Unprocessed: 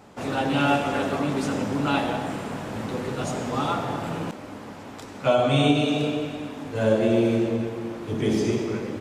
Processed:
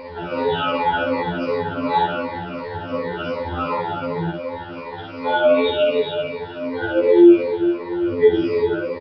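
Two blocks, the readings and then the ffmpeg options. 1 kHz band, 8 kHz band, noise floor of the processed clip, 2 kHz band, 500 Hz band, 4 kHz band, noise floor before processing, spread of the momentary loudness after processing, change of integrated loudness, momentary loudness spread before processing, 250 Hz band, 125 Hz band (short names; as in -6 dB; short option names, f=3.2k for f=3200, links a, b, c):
+5.0 dB, under -25 dB, -34 dBFS, +4.5 dB, +7.5 dB, +1.5 dB, -40 dBFS, 13 LU, +5.0 dB, 12 LU, +4.0 dB, -4.5 dB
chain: -filter_complex "[0:a]afftfilt=real='re*pow(10,23/40*sin(2*PI*(0.94*log(max(b,1)*sr/1024/100)/log(2)-(-2.7)*(pts-256)/sr)))':imag='im*pow(10,23/40*sin(2*PI*(0.94*log(max(b,1)*sr/1024/100)/log(2)-(-2.7)*(pts-256)/sr)))':win_size=1024:overlap=0.75,highpass=f=41:w=0.5412,highpass=f=41:w=1.3066,aemphasis=mode=reproduction:type=75fm,aecho=1:1:2.1:0.67,bandreject=f=355.8:t=h:w=4,bandreject=f=711.6:t=h:w=4,bandreject=f=1.0674k:t=h:w=4,bandreject=f=1.4232k:t=h:w=4,bandreject=f=1.779k:t=h:w=4,bandreject=f=2.1348k:t=h:w=4,bandreject=f=2.4906k:t=h:w=4,bandreject=f=2.8464k:t=h:w=4,bandreject=f=3.2022k:t=h:w=4,bandreject=f=3.558k:t=h:w=4,bandreject=f=3.9138k:t=h:w=4,bandreject=f=4.2696k:t=h:w=4,bandreject=f=4.6254k:t=h:w=4,bandreject=f=4.9812k:t=h:w=4,bandreject=f=5.337k:t=h:w=4,bandreject=f=5.6928k:t=h:w=4,bandreject=f=6.0486k:t=h:w=4,bandreject=f=6.4044k:t=h:w=4,bandreject=f=6.7602k:t=h:w=4,bandreject=f=7.116k:t=h:w=4,bandreject=f=7.4718k:t=h:w=4,bandreject=f=7.8276k:t=h:w=4,acompressor=mode=upward:threshold=-22dB:ratio=2.5,aeval=exprs='sgn(val(0))*max(abs(val(0))-0.00447,0)':c=same,flanger=delay=3.4:depth=3.9:regen=-25:speed=0.87:shape=sinusoidal,asplit=2[a][b];[b]aecho=0:1:46|61:0.501|0.668[c];[a][c]amix=inputs=2:normalize=0,aresample=11025,aresample=44100,alimiter=level_in=7.5dB:limit=-1dB:release=50:level=0:latency=1,afftfilt=real='re*2*eq(mod(b,4),0)':imag='im*2*eq(mod(b,4),0)':win_size=2048:overlap=0.75,volume=-4.5dB"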